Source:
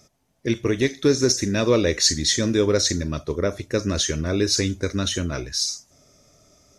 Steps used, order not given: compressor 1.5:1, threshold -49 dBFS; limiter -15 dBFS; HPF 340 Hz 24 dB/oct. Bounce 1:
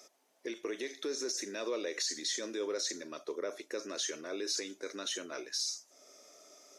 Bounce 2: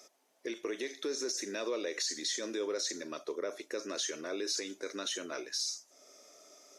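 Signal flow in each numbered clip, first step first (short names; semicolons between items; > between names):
limiter > compressor > HPF; limiter > HPF > compressor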